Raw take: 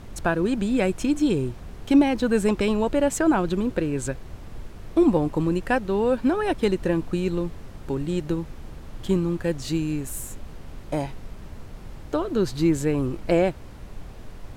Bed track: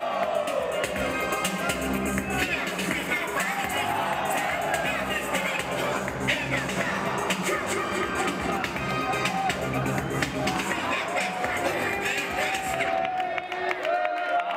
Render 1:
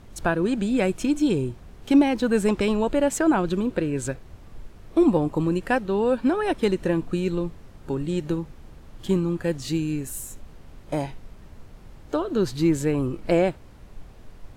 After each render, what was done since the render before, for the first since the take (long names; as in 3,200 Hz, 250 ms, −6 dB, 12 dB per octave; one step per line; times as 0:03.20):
noise reduction from a noise print 6 dB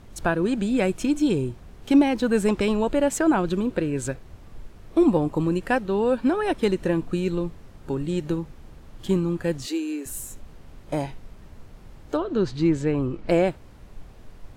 0:09.66–0:10.06: Butterworth high-pass 280 Hz 48 dB per octave
0:12.17–0:13.29: high-frequency loss of the air 97 metres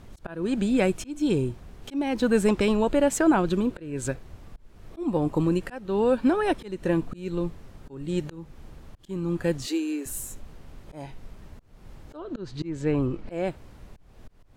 volume swells 309 ms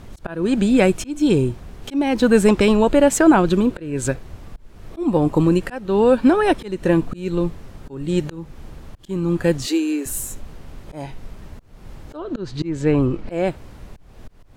level +7.5 dB